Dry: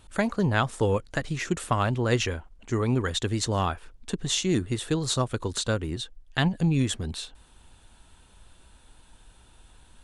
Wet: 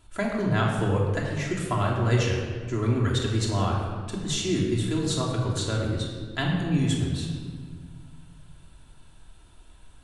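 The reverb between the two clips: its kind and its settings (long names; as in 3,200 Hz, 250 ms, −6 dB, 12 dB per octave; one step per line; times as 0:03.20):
rectangular room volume 2,200 cubic metres, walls mixed, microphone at 3 metres
level −5.5 dB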